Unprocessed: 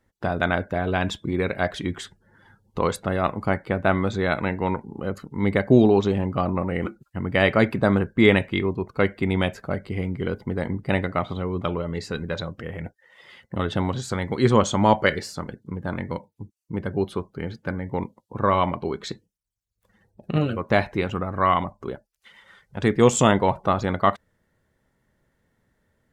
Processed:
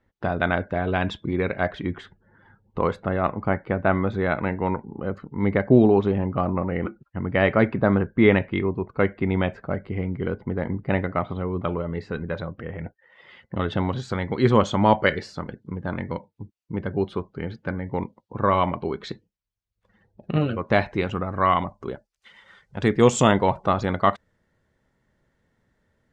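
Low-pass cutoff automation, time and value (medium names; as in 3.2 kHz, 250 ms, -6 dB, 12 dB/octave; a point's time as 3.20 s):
1.35 s 3.6 kHz
1.86 s 2.2 kHz
12.85 s 2.2 kHz
13.57 s 4 kHz
20.38 s 4 kHz
21.21 s 7.2 kHz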